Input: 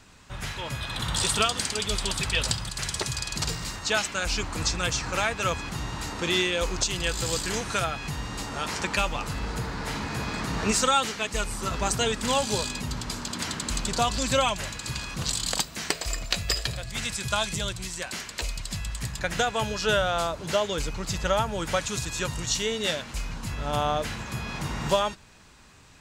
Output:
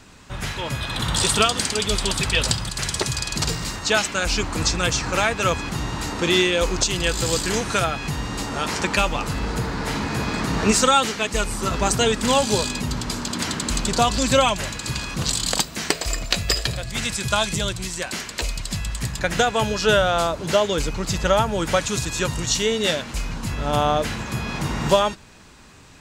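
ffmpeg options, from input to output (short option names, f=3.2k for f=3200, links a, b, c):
-af "equalizer=f=300:t=o:w=1.8:g=3.5,volume=5dB"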